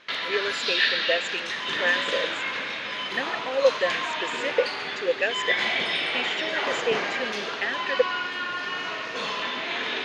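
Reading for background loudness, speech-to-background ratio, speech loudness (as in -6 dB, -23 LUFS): -27.0 LUFS, -2.0 dB, -29.0 LUFS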